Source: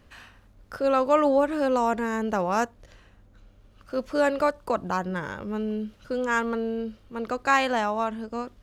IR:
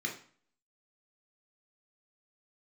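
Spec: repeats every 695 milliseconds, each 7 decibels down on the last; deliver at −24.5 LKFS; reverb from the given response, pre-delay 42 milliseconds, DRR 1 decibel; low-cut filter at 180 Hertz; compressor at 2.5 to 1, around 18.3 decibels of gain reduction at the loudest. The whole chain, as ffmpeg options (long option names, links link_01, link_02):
-filter_complex "[0:a]highpass=180,acompressor=threshold=-45dB:ratio=2.5,aecho=1:1:695|1390|2085|2780|3475:0.447|0.201|0.0905|0.0407|0.0183,asplit=2[link_01][link_02];[1:a]atrim=start_sample=2205,adelay=42[link_03];[link_02][link_03]afir=irnorm=-1:irlink=0,volume=-4.5dB[link_04];[link_01][link_04]amix=inputs=2:normalize=0,volume=14.5dB"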